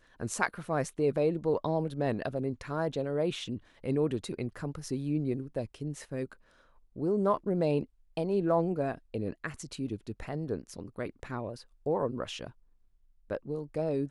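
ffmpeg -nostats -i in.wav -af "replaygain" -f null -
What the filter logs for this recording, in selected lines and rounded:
track_gain = +12.1 dB
track_peak = 0.196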